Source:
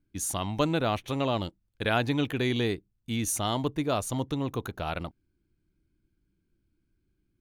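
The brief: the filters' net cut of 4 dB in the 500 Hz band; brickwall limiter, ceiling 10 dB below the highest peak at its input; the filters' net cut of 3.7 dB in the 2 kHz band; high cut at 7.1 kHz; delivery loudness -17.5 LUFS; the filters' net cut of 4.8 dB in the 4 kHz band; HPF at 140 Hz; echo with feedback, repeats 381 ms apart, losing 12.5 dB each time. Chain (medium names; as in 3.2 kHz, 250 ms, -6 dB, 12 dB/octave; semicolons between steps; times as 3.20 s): high-pass 140 Hz; low-pass 7.1 kHz; peaking EQ 500 Hz -5 dB; peaking EQ 2 kHz -3.5 dB; peaking EQ 4 kHz -4.5 dB; peak limiter -25 dBFS; feedback delay 381 ms, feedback 24%, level -12.5 dB; trim +19 dB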